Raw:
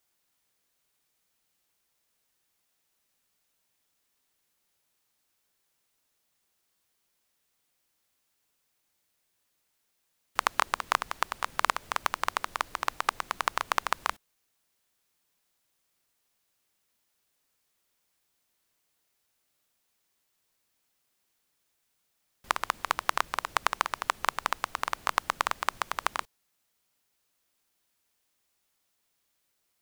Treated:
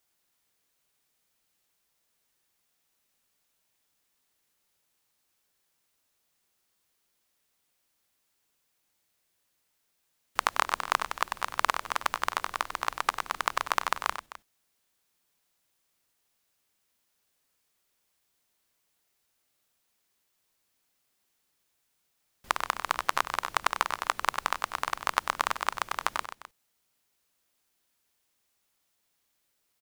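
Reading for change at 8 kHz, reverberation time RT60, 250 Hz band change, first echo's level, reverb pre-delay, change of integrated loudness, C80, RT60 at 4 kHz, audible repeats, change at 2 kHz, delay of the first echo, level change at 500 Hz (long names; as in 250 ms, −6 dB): +0.5 dB, no reverb audible, +0.5 dB, −10.5 dB, no reverb audible, +0.5 dB, no reverb audible, no reverb audible, 2, +0.5 dB, 96 ms, +0.5 dB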